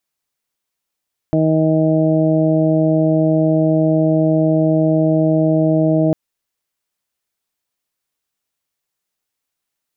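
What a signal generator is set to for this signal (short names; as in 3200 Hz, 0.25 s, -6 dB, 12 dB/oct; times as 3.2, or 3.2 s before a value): steady additive tone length 4.80 s, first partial 158 Hz, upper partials 1/-8/-1.5/-18.5 dB, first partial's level -16 dB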